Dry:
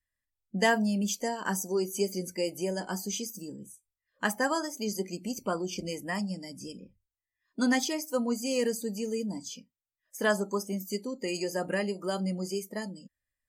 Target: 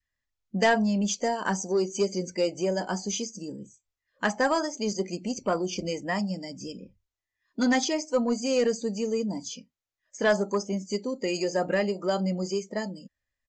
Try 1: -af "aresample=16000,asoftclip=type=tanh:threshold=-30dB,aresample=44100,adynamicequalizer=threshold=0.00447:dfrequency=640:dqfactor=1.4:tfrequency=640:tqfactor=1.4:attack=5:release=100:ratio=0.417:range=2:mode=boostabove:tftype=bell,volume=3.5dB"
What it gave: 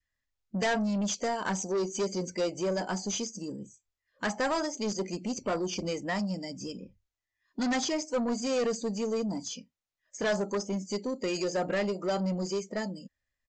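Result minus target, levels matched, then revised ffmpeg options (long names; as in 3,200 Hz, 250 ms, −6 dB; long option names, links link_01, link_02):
soft clipping: distortion +10 dB
-af "aresample=16000,asoftclip=type=tanh:threshold=-20dB,aresample=44100,adynamicequalizer=threshold=0.00447:dfrequency=640:dqfactor=1.4:tfrequency=640:tqfactor=1.4:attack=5:release=100:ratio=0.417:range=2:mode=boostabove:tftype=bell,volume=3.5dB"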